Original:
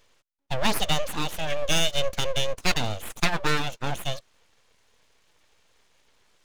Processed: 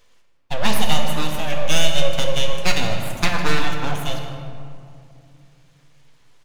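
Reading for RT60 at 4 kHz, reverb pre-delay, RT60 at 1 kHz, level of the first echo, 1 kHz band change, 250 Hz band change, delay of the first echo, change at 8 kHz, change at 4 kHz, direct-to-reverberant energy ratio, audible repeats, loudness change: 1.2 s, 4 ms, 2.3 s, −14.0 dB, +4.5 dB, +5.5 dB, 155 ms, +3.0 dB, +3.5 dB, 1.5 dB, 1, +4.0 dB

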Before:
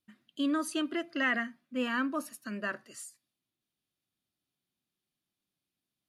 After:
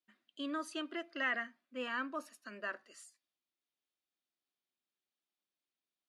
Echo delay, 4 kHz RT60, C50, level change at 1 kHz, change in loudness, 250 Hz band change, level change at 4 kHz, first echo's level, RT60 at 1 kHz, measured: no echo audible, no reverb audible, no reverb audible, −5.0 dB, −7.0 dB, −11.5 dB, −5.5 dB, no echo audible, no reverb audible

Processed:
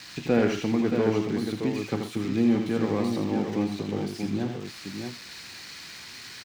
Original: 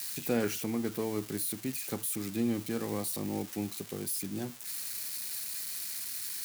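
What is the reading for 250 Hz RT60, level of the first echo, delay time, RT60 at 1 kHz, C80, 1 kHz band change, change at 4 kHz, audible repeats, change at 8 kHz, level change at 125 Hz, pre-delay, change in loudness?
no reverb audible, −6.0 dB, 81 ms, no reverb audible, no reverb audible, +8.5 dB, +3.5 dB, 3, −9.5 dB, +9.0 dB, no reverb audible, +7.0 dB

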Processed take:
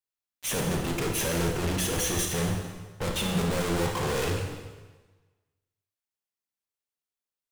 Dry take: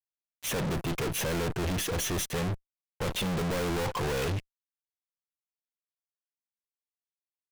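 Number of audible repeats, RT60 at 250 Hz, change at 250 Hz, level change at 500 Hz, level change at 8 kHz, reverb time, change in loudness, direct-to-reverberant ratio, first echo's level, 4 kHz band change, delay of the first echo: no echo audible, 1.3 s, +3.0 dB, +2.5 dB, +5.0 dB, 1.3 s, +2.5 dB, 2.0 dB, no echo audible, +2.5 dB, no echo audible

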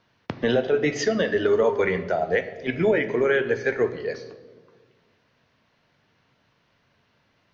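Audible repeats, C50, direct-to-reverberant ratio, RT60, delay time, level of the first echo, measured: no echo audible, 13.0 dB, 10.0 dB, 1.5 s, no echo audible, no echo audible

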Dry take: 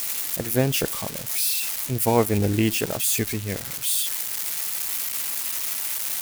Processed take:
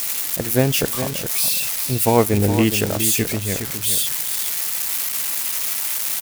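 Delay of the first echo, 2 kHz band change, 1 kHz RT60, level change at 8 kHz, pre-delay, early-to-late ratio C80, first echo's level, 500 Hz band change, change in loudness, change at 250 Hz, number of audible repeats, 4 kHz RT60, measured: 415 ms, +4.5 dB, no reverb audible, +4.5 dB, no reverb audible, no reverb audible, −9.5 dB, +4.5 dB, +4.5 dB, +4.5 dB, 1, no reverb audible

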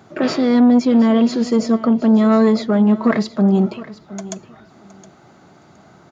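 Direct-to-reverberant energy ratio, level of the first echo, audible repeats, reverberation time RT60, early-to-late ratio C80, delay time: no reverb audible, −17.0 dB, 2, no reverb audible, no reverb audible, 717 ms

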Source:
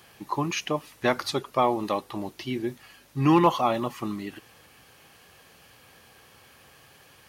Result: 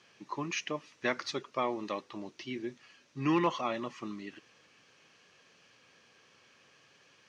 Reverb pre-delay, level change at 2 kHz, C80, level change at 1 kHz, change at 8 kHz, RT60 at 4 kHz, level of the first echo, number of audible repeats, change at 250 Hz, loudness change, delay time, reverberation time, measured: no reverb audible, −4.0 dB, no reverb audible, −10.5 dB, −6.5 dB, no reverb audible, no echo audible, no echo audible, −8.5 dB, −8.5 dB, no echo audible, no reverb audible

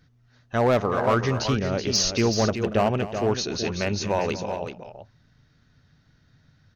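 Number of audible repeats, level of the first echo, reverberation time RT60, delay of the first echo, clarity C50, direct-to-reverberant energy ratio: 2, −15.0 dB, no reverb audible, 234 ms, no reverb audible, no reverb audible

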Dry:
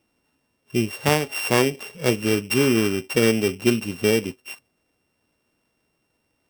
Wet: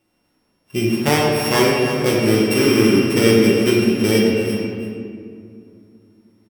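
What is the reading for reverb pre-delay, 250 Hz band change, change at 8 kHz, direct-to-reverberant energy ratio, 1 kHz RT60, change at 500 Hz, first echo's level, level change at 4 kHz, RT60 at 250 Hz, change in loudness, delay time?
6 ms, +7.0 dB, +3.0 dB, −4.0 dB, 2.0 s, +6.0 dB, −11.0 dB, +5.0 dB, 3.4 s, +5.5 dB, 326 ms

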